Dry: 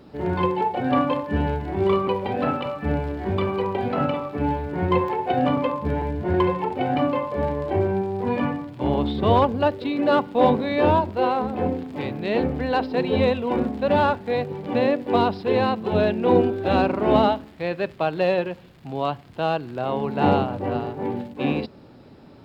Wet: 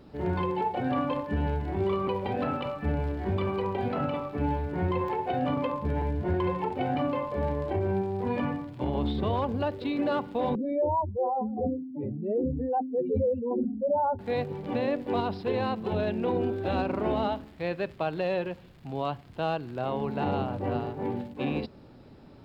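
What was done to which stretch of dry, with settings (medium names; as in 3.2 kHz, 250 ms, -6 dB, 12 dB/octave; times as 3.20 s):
10.55–14.19 s: spectral contrast enhancement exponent 3.2
whole clip: bass shelf 65 Hz +10.5 dB; peak limiter -14.5 dBFS; trim -5 dB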